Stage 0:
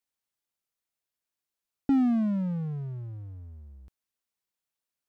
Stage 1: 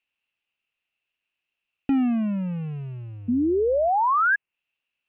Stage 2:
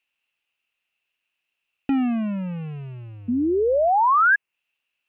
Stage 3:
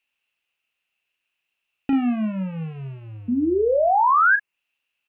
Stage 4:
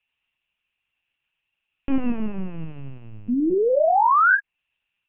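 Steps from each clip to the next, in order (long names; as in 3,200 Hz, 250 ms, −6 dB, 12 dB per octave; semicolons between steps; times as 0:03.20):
sound drawn into the spectrogram rise, 0:03.28–0:04.36, 230–1,700 Hz −23 dBFS; low-pass with resonance 2,700 Hz, resonance Q 11; treble cut that deepens with the level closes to 2,000 Hz, closed at −25 dBFS; level +1.5 dB
low-shelf EQ 380 Hz −6 dB; level +4 dB
double-tracking delay 37 ms −8.5 dB
linear-prediction vocoder at 8 kHz pitch kept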